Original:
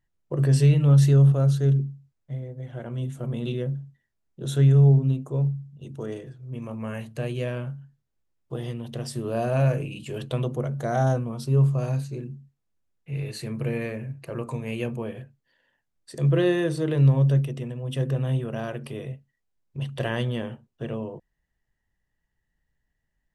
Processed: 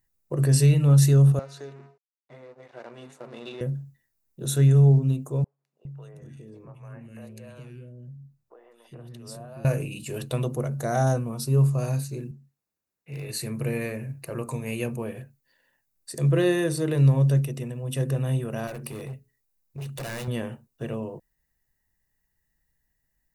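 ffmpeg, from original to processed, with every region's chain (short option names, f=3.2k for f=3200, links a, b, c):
-filter_complex "[0:a]asettb=1/sr,asplit=3[a][b][c];[a]atrim=end=1.394[d];[b]atrim=start=1.39:end=3.61,asetpts=PTS-STARTPTS,afade=t=in:d=0.004:c=qsin,afade=t=out:st=2.216:d=0.004:c=qsin,acompressor=threshold=-25dB:ratio=4:attack=3.2:release=140:knee=1:detection=peak,aeval=exprs='sgn(val(0))*max(abs(val(0))-0.00531,0)':c=same,highpass=420,lowpass=4.5k[e];[c]atrim=start=3.606[f];[d][e]acrossfade=d=0.004:c1=hsin:c2=qsin[g];[g][f]acrossfade=d=0.004:c1=qsin:c2=hsin,asettb=1/sr,asplit=3[h][i][j];[h]atrim=end=5.444[k];[i]atrim=start=5.44:end=9.65,asetpts=PTS-STARTPTS,afade=t=in:d=0.004:c=qsin,afade=t=out:st=4.206:d=0.004:c=qsin,lowpass=f=3.2k:p=1,acompressor=threshold=-41dB:ratio=3:attack=3.2:release=140:knee=1:detection=peak,acrossover=split=440|2000[l][m][n];[n]adelay=210[o];[l]adelay=410[p];[p][m][o]amix=inputs=3:normalize=0,atrim=end_sample=185661[q];[j]atrim=start=9.646[r];[k][q]acrossfade=d=0.004:c1=hsin:c2=qsin[s];[s][r]acrossfade=d=0.004:c1=qsin:c2=hsin,asettb=1/sr,asplit=3[t][u][v];[t]atrim=end=12.314[w];[u]atrim=start=12.31:end=13.29,asetpts=PTS-STARTPTS,afade=t=in:d=0.004:c=qsin,afade=t=out:st=0.976:d=0.004:c=qsin,highpass=f=230:p=1,aemphasis=mode=reproduction:type=cd,asoftclip=type=hard:threshold=-28.5dB[x];[v]atrim=start=13.286[y];[w][x]acrossfade=d=0.004:c1=hsin:c2=qsin[z];[z][y]acrossfade=d=0.004:c1=qsin:c2=hsin,asettb=1/sr,asplit=3[aa][ab][ac];[aa]atrim=end=18.674[ad];[ab]atrim=start=18.67:end=20.28,asetpts=PTS-STARTPTS,afade=t=in:d=0.004:c=qsin,afade=t=out:st=1.606:d=0.004:c=qsin,bandreject=f=60:t=h:w=6,bandreject=f=120:t=h:w=6,bandreject=f=180:t=h:w=6,bandreject=f=240:t=h:w=6,bandreject=f=300:t=h:w=6,bandreject=f=360:t=h:w=6,bandreject=f=420:t=h:w=6,asoftclip=type=hard:threshold=-31.5dB[ae];[ac]atrim=start=20.276[af];[ad][ae]acrossfade=d=0.004:c1=hsin:c2=qsin[ag];[ag][af]acrossfade=d=0.004:c1=qsin:c2=hsin,aemphasis=mode=production:type=50fm,bandreject=f=3.2k:w=5.8"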